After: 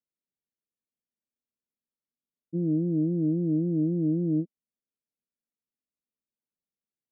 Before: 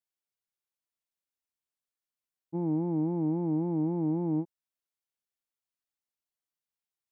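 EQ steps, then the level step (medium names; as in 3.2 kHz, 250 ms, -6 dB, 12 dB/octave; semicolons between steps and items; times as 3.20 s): rippled Chebyshev low-pass 630 Hz, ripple 3 dB; peaking EQ 240 Hz +11.5 dB 0.83 oct; 0.0 dB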